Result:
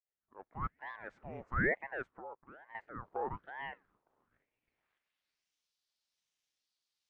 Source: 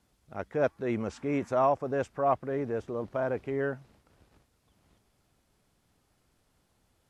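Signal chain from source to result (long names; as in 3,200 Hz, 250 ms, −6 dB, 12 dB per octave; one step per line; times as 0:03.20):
fade in at the beginning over 0.89 s
0:02.10–0:02.75: downward compressor 8 to 1, threshold −39 dBFS, peak gain reduction 17.5 dB
band-pass filter sweep 730 Hz → 4,500 Hz, 0:04.32–0:05.52
ring modulator whose carrier an LFO sweeps 770 Hz, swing 80%, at 1.1 Hz
level −1.5 dB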